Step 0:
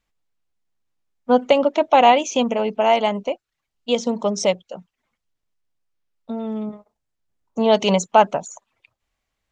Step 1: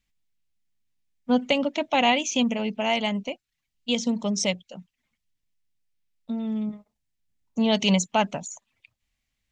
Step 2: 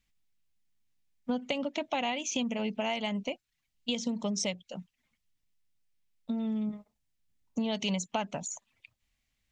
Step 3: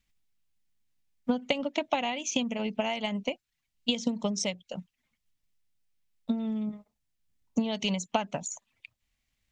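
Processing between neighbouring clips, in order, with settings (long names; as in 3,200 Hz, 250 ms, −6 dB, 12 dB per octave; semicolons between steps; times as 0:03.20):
flat-topped bell 710 Hz −10 dB 2.4 octaves
downward compressor 6 to 1, threshold −29 dBFS, peak gain reduction 12.5 dB
transient designer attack +6 dB, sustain −1 dB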